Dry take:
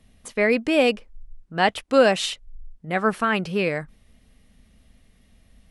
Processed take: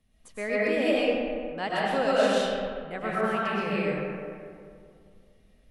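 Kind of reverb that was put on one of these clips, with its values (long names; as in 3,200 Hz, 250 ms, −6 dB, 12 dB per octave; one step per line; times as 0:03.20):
comb and all-pass reverb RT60 2.3 s, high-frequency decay 0.45×, pre-delay 80 ms, DRR −8 dB
level −13.5 dB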